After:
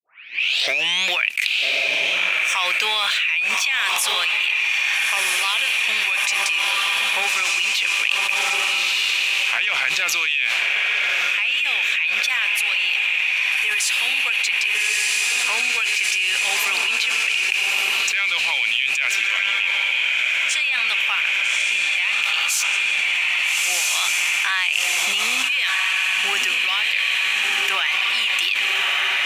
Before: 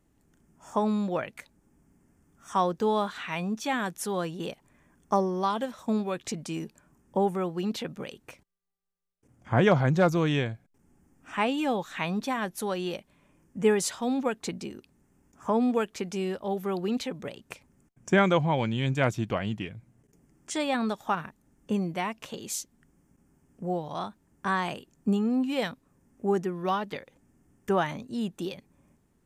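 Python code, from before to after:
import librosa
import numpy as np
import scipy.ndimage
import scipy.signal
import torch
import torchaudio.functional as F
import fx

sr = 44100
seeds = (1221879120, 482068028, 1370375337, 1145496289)

y = fx.tape_start_head(x, sr, length_s=1.11)
y = fx.leveller(y, sr, passes=1)
y = fx.highpass_res(y, sr, hz=2500.0, q=6.5)
y = fx.echo_diffused(y, sr, ms=1281, feedback_pct=50, wet_db=-4.0)
y = fx.env_flatten(y, sr, amount_pct=100)
y = y * librosa.db_to_amplitude(-5.0)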